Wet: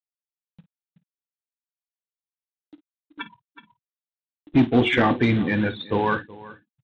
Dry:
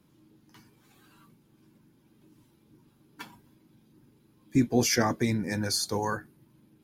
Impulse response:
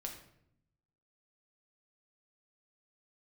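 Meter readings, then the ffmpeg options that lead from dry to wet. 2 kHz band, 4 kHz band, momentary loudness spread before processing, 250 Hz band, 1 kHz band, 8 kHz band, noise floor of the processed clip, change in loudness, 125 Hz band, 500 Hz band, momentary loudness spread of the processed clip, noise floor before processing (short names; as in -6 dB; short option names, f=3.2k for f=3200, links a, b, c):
+9.0 dB, +0.5 dB, 9 LU, +7.0 dB, +7.5 dB, under -25 dB, under -85 dBFS, +6.0 dB, +6.0 dB, +6.5 dB, 20 LU, -64 dBFS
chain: -filter_complex "[0:a]bandreject=f=364:t=h:w=4,bandreject=f=728:t=h:w=4,afftfilt=real='re*gte(hypot(re,im),0.0178)':imag='im*gte(hypot(re,im),0.0178)':win_size=1024:overlap=0.75,adynamicequalizer=threshold=0.01:dfrequency=290:dqfactor=2.7:tfrequency=290:tqfactor=2.7:attack=5:release=100:ratio=0.375:range=2:mode=boostabove:tftype=bell,asplit=2[a][b];[b]adelay=373.2,volume=-21dB,highshelf=f=4k:g=-8.4[c];[a][c]amix=inputs=2:normalize=0,crystalizer=i=3.5:c=0,aresample=8000,acrusher=bits=4:mode=log:mix=0:aa=0.000001,aresample=44100,asoftclip=type=tanh:threshold=-16.5dB,acompressor=mode=upward:threshold=-40dB:ratio=2.5,asplit=2[d][e];[e]aecho=0:1:24|52:0.15|0.178[f];[d][f]amix=inputs=2:normalize=0,volume=7dB"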